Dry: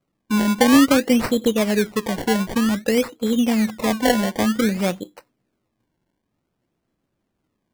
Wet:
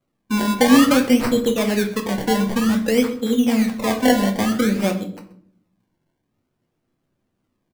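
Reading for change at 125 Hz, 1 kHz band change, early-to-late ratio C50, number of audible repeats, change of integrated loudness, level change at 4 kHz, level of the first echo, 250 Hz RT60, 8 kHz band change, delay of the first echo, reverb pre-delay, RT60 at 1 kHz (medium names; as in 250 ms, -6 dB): +1.5 dB, +1.0 dB, 11.0 dB, 1, +1.0 dB, +0.5 dB, -19.0 dB, 0.95 s, 0.0 dB, 130 ms, 8 ms, 0.50 s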